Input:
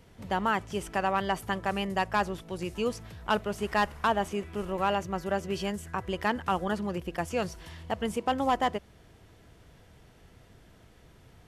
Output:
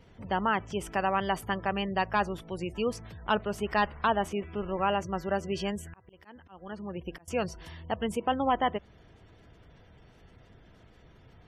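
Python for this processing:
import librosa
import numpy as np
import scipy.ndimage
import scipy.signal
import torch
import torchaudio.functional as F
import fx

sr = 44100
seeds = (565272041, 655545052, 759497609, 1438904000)

y = fx.spec_gate(x, sr, threshold_db=-30, keep='strong')
y = fx.auto_swell(y, sr, attack_ms=776.0, at=(5.71, 7.28))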